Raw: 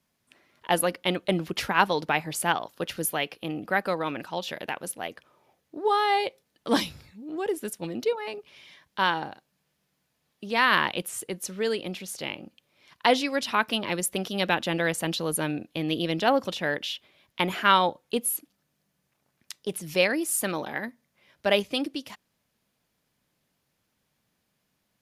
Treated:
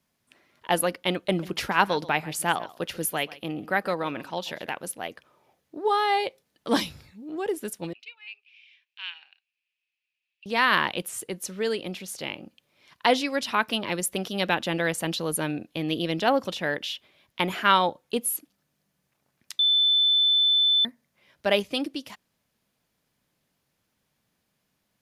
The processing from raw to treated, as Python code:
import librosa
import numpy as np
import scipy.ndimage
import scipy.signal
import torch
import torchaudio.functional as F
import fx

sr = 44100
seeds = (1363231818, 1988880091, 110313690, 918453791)

y = fx.echo_single(x, sr, ms=136, db=-19.0, at=(1.29, 4.75))
y = fx.ladder_bandpass(y, sr, hz=2700.0, resonance_pct=80, at=(7.93, 10.46))
y = fx.edit(y, sr, fx.bleep(start_s=19.59, length_s=1.26, hz=3520.0, db=-17.5), tone=tone)